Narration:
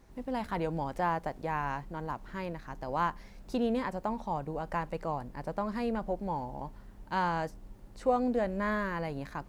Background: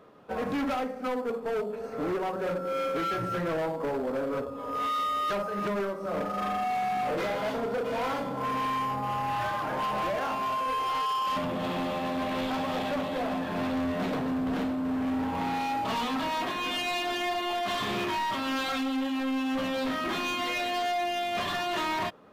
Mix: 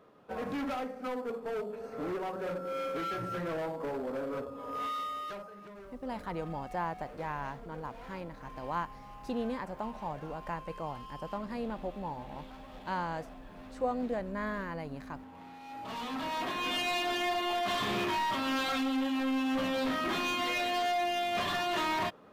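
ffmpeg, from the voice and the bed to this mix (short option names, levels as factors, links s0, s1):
-filter_complex "[0:a]adelay=5750,volume=0.596[s0];[1:a]volume=4.22,afade=t=out:st=4.83:d=0.77:silence=0.199526,afade=t=in:st=15.61:d=1.13:silence=0.125893[s1];[s0][s1]amix=inputs=2:normalize=0"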